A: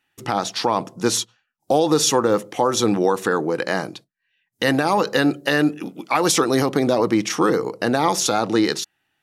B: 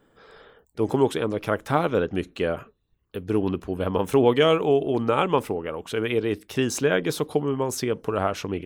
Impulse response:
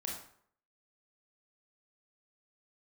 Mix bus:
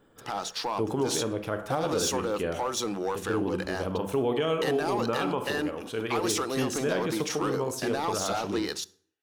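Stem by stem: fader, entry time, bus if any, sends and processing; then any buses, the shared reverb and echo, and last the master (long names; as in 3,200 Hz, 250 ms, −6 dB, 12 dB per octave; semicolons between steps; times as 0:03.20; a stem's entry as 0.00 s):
−15.0 dB, 0.00 s, send −19 dB, low-shelf EQ 400 Hz −8.5 dB; leveller curve on the samples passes 2
−1.5 dB, 0.00 s, send −10 dB, automatic ducking −8 dB, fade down 1.75 s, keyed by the first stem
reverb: on, RT60 0.60 s, pre-delay 23 ms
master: parametric band 2,000 Hz −3 dB 0.42 octaves; brickwall limiter −18 dBFS, peak gain reduction 7 dB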